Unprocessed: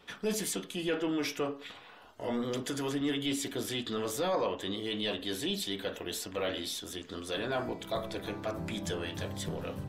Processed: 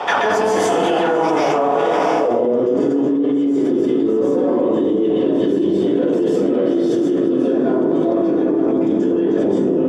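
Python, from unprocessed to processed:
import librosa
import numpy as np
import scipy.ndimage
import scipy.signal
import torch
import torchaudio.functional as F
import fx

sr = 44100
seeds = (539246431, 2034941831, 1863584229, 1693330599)

p1 = fx.octave_divider(x, sr, octaves=1, level_db=4.0)
p2 = scipy.signal.sosfilt(scipy.signal.butter(2, 220.0, 'highpass', fs=sr, output='sos'), p1)
p3 = fx.peak_eq(p2, sr, hz=6100.0, db=7.5, octaves=1.3)
p4 = fx.notch(p3, sr, hz=4000.0, q=5.9)
p5 = fx.fold_sine(p4, sr, drive_db=8, ceiling_db=-18.0)
p6 = p4 + (p5 * 10.0 ** (-3.0 / 20.0))
p7 = fx.filter_sweep_bandpass(p6, sr, from_hz=780.0, to_hz=340.0, start_s=1.39, end_s=2.78, q=3.5)
p8 = fx.echo_diffused(p7, sr, ms=668, feedback_pct=44, wet_db=-12)
p9 = fx.rev_plate(p8, sr, seeds[0], rt60_s=1.1, hf_ratio=0.5, predelay_ms=120, drr_db=-9.5)
p10 = fx.env_flatten(p9, sr, amount_pct=100)
y = p10 * 10.0 ** (-5.5 / 20.0)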